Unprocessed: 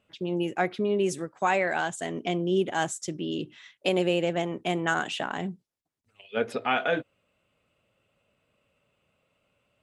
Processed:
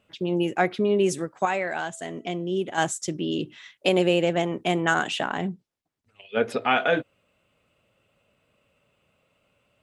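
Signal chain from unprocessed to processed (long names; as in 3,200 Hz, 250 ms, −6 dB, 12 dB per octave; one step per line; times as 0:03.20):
0:01.45–0:02.78: tuned comb filter 660 Hz, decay 0.51 s, mix 50%
0:05.30–0:06.44: high-shelf EQ 7,000 Hz −9.5 dB
level +4 dB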